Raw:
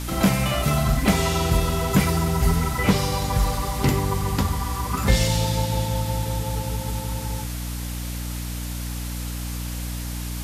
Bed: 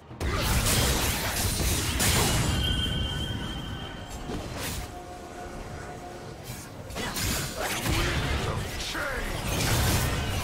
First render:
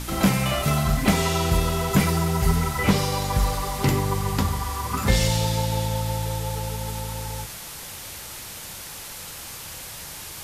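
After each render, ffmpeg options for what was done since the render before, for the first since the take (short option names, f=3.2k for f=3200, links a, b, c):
-af "bandreject=f=60:t=h:w=4,bandreject=f=120:t=h:w=4,bandreject=f=180:t=h:w=4,bandreject=f=240:t=h:w=4,bandreject=f=300:t=h:w=4,bandreject=f=360:t=h:w=4,bandreject=f=420:t=h:w=4,bandreject=f=480:t=h:w=4,bandreject=f=540:t=h:w=4,bandreject=f=600:t=h:w=4,bandreject=f=660:t=h:w=4"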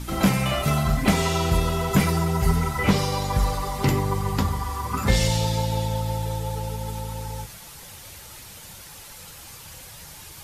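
-af "afftdn=nr=7:nf=-38"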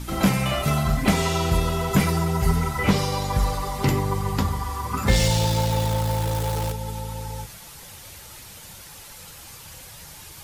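-filter_complex "[0:a]asettb=1/sr,asplit=3[a][b][c];[a]atrim=end=5.084[d];[b]atrim=start=5.08:end=6.72,asetpts=PTS-STARTPTS,afade=t=in:d=0.004:c=qsin,afade=t=out:st=1.636:d=0.004:c=qsin,aeval=exprs='val(0)+0.5*0.0447*sgn(val(0))':c=same[e];[c]atrim=start=6.716[f];[d][e]acrossfade=d=0.004:c1=hsin:c2=qsin[g];[g][f]acrossfade=d=0.004:c1=qsin:c2=hsin"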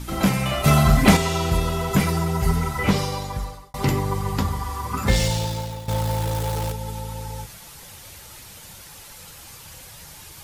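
-filter_complex "[0:a]asettb=1/sr,asplit=3[a][b][c];[a]atrim=end=0.644[d];[b]atrim=start=0.64:end=1.17,asetpts=PTS-STARTPTS,afade=t=in:d=0.004:c=qsin,afade=t=out:st=0.526:d=0.004:c=qsin,acontrast=77[e];[c]atrim=start=1.166[f];[d][e]acrossfade=d=0.004:c1=hsin:c2=qsin[g];[g][f]acrossfade=d=0.004:c1=qsin:c2=hsin,asplit=3[h][i][j];[h]atrim=end=3.74,asetpts=PTS-STARTPTS,afade=t=out:st=2.97:d=0.77[k];[i]atrim=start=3.74:end=5.88,asetpts=PTS-STARTPTS,afade=t=in:d=0.004:c=hsin,afade=t=out:st=1.36:d=0.78:silence=0.177828[l];[j]atrim=start=5.88,asetpts=PTS-STARTPTS,afade=t=in:d=0.004:c=hsin:silence=0.177828[m];[k][l][m]concat=n=3:v=0:a=1"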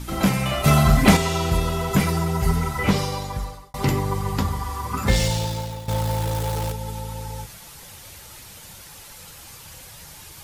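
-af anull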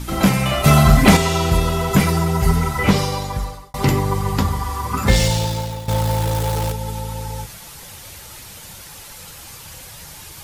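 -af "volume=4.5dB,alimiter=limit=-1dB:level=0:latency=1"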